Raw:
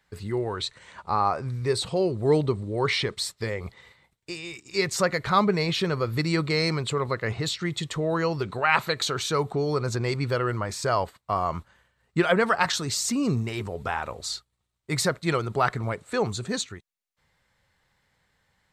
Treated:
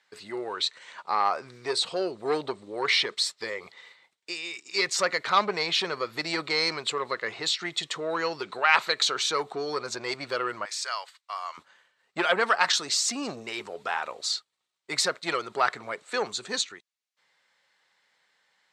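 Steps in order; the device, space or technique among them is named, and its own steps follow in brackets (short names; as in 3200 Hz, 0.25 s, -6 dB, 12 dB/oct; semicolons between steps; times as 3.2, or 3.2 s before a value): 10.65–11.58 Bessel high-pass 1800 Hz, order 2; public-address speaker with an overloaded transformer (core saturation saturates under 860 Hz; BPF 290–5600 Hz); tilt +2.5 dB/oct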